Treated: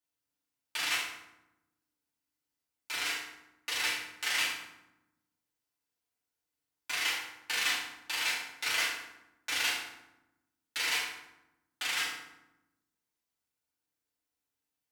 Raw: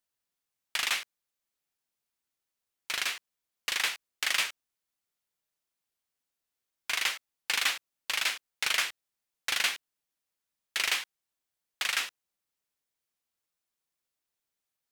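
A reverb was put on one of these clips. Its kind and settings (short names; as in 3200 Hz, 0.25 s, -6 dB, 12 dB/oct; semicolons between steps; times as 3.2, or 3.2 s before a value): FDN reverb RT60 0.9 s, low-frequency decay 1.6×, high-frequency decay 0.65×, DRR -8 dB; gain -9.5 dB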